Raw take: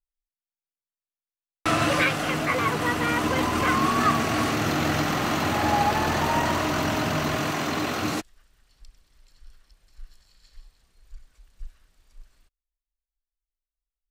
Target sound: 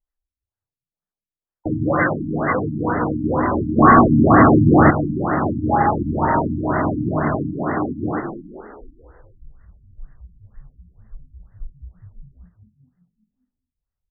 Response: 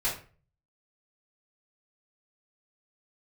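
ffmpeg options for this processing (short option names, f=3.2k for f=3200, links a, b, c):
-filter_complex "[0:a]asplit=7[a][b][c][d][e][f][g];[b]adelay=202,afreqshift=38,volume=-8dB[h];[c]adelay=404,afreqshift=76,volume=-13.4dB[i];[d]adelay=606,afreqshift=114,volume=-18.7dB[j];[e]adelay=808,afreqshift=152,volume=-24.1dB[k];[f]adelay=1010,afreqshift=190,volume=-29.4dB[l];[g]adelay=1212,afreqshift=228,volume=-34.8dB[m];[a][h][i][j][k][l][m]amix=inputs=7:normalize=0,asplit=3[n][o][p];[n]afade=t=out:st=3.77:d=0.02[q];[o]aeval=exprs='0.447*(cos(1*acos(clip(val(0)/0.447,-1,1)))-cos(1*PI/2))+0.2*(cos(5*acos(clip(val(0)/0.447,-1,1)))-cos(5*PI/2))':c=same,afade=t=in:st=3.77:d=0.02,afade=t=out:st=4.89:d=0.02[r];[p]afade=t=in:st=4.89:d=0.02[s];[q][r][s]amix=inputs=3:normalize=0,afftfilt=real='re*lt(b*sr/1024,310*pow(2100/310,0.5+0.5*sin(2*PI*2.1*pts/sr)))':imag='im*lt(b*sr/1024,310*pow(2100/310,0.5+0.5*sin(2*PI*2.1*pts/sr)))':win_size=1024:overlap=0.75,volume=5.5dB"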